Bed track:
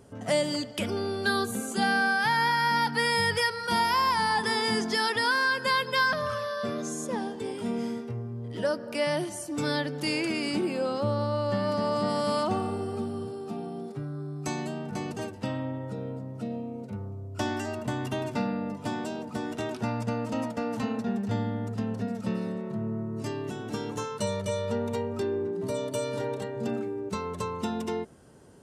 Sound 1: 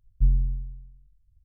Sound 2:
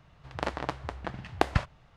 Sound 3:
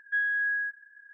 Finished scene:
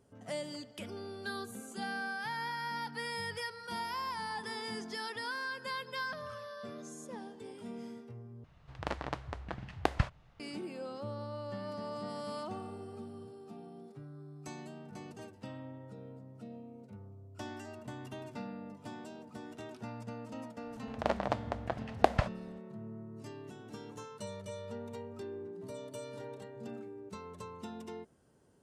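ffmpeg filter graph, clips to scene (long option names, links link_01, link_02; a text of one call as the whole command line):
ffmpeg -i bed.wav -i cue0.wav -i cue1.wav -filter_complex "[2:a]asplit=2[link_01][link_02];[0:a]volume=-13.5dB[link_03];[link_01]lowshelf=frequency=190:gain=3[link_04];[link_02]equalizer=frequency=630:width_type=o:width=0.77:gain=9.5[link_05];[link_03]asplit=2[link_06][link_07];[link_06]atrim=end=8.444[link_08];[link_04]atrim=end=1.96,asetpts=PTS-STARTPTS,volume=-5.5dB[link_09];[link_07]atrim=start=10.396[link_10];[link_05]atrim=end=1.96,asetpts=PTS-STARTPTS,volume=-4.5dB,afade=type=in:duration=0.004:curve=hsin,afade=type=out:start_time=1.956:duration=0.004:curve=hsin,adelay=20630[link_11];[link_08][link_09]acrossfade=duration=0.004:curve1=hsin:curve2=hsin[link_12];[link_12][link_10]acrossfade=duration=0.004:curve1=hsin:curve2=hsin[link_13];[link_13][link_11]amix=inputs=2:normalize=0" out.wav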